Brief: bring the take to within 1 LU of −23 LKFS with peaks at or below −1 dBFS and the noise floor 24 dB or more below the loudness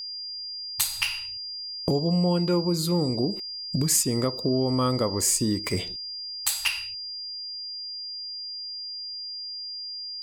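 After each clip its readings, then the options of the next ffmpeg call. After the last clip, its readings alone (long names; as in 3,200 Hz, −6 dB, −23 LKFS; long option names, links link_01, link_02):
interfering tone 4,800 Hz; level of the tone −33 dBFS; integrated loudness −27.0 LKFS; sample peak −8.5 dBFS; target loudness −23.0 LKFS
→ -af "bandreject=frequency=4800:width=30"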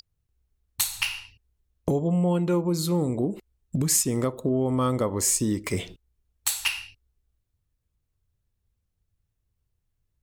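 interfering tone none found; integrated loudness −25.5 LKFS; sample peak −8.5 dBFS; target loudness −23.0 LKFS
→ -af "volume=2.5dB"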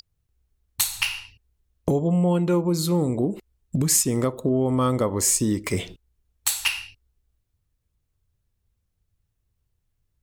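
integrated loudness −23.0 LKFS; sample peak −6.0 dBFS; background noise floor −75 dBFS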